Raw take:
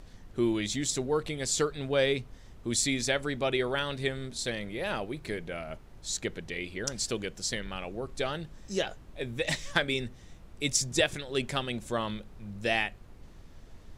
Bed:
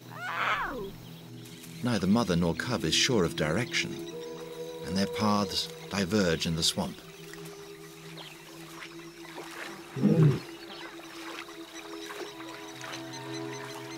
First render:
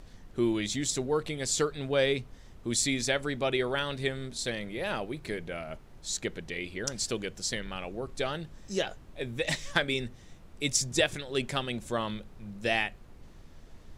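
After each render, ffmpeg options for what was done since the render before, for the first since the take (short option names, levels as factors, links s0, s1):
-af "bandreject=f=50:t=h:w=4,bandreject=f=100:t=h:w=4"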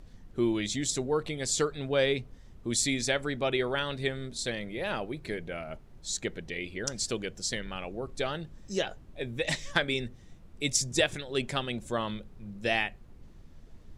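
-af "afftdn=nr=6:nf=-52"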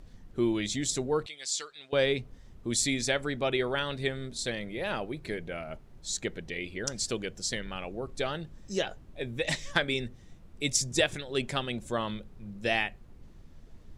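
-filter_complex "[0:a]asettb=1/sr,asplit=3[s0][s1][s2];[s0]atrim=end=1.264[s3];[s1]atrim=start=1.26:end=1.93,asetpts=PTS-STARTPTS,afade=t=in:d=0.004:c=qsin,afade=t=out:st=0.666:d=0.004:c=qsin,bandpass=f=4500:t=q:w=0.85[s4];[s2]atrim=start=1.926[s5];[s3][s4]acrossfade=d=0.004:c1=hsin:c2=qsin[s6];[s6][s5]acrossfade=d=0.004:c1=qsin:c2=hsin"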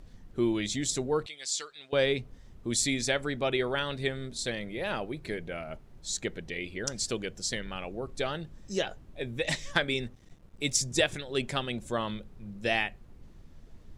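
-filter_complex "[0:a]asettb=1/sr,asplit=3[s0][s1][s2];[s0]atrim=end=10.034[s3];[s1]atrim=start=10.03:end=10.77,asetpts=PTS-STARTPTS,afade=t=in:d=0.004:c=qsin,afade=t=out:st=0.736:d=0.004:c=qsin,aeval=exprs='sgn(val(0))*max(abs(val(0))-0.0015,0)':c=same[s4];[s2]atrim=start=10.766[s5];[s3][s4]acrossfade=d=0.004:c1=hsin:c2=qsin[s6];[s6][s5]acrossfade=d=0.004:c1=qsin:c2=hsin"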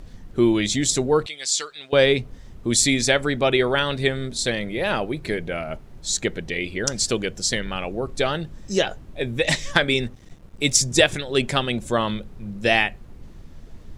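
-af "volume=2.99,alimiter=limit=0.794:level=0:latency=1"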